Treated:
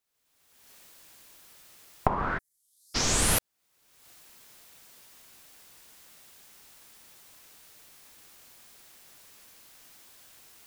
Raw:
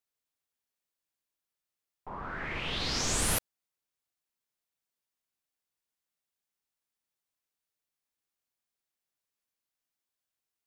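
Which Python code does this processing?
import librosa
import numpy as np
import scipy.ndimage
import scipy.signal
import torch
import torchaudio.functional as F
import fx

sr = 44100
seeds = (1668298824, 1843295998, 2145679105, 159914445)

y = fx.recorder_agc(x, sr, target_db=-25.5, rise_db_per_s=42.0, max_gain_db=30)
y = fx.cheby2_highpass(y, sr, hz=2800.0, order=4, stop_db=70, at=(2.37, 2.94), fade=0.02)
y = y * 10.0 ** (4.5 / 20.0)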